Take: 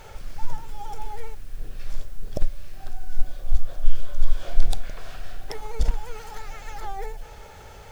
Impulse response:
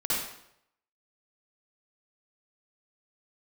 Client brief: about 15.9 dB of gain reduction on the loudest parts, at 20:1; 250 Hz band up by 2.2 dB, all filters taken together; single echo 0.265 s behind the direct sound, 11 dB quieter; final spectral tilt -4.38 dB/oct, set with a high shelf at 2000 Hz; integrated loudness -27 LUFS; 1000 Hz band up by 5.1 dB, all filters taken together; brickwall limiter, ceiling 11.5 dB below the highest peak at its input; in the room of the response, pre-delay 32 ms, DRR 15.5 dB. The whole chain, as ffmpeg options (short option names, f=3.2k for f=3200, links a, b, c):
-filter_complex "[0:a]equalizer=f=250:t=o:g=3,equalizer=f=1k:t=o:g=7.5,highshelf=f=2k:g=-5,acompressor=threshold=-21dB:ratio=20,alimiter=limit=-23dB:level=0:latency=1,aecho=1:1:265:0.282,asplit=2[a][b];[1:a]atrim=start_sample=2205,adelay=32[c];[b][c]afir=irnorm=-1:irlink=0,volume=-24dB[d];[a][d]amix=inputs=2:normalize=0,volume=13dB"